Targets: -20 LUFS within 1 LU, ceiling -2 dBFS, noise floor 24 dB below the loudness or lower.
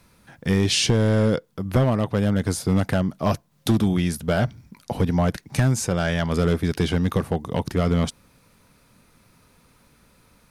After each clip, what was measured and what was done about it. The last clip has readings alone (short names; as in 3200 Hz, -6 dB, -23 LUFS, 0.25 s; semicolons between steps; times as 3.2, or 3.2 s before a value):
clipped 0.8%; flat tops at -11.5 dBFS; loudness -22.5 LUFS; peak -11.5 dBFS; loudness target -20.0 LUFS
-> clip repair -11.5 dBFS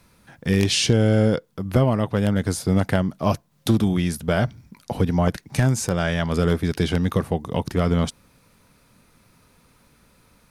clipped 0.0%; loudness -22.0 LUFS; peak -2.5 dBFS; loudness target -20.0 LUFS
-> gain +2 dB; limiter -2 dBFS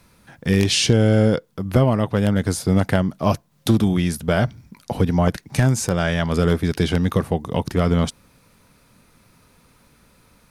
loudness -20.0 LUFS; peak -2.0 dBFS; noise floor -57 dBFS